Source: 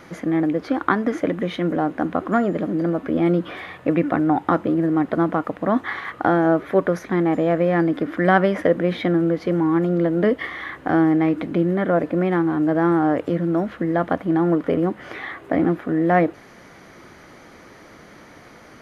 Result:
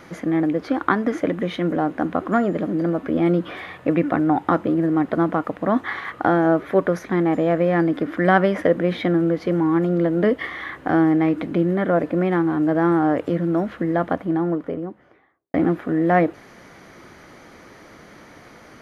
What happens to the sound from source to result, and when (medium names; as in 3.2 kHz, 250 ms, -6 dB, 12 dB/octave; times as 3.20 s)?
13.81–15.54 s: studio fade out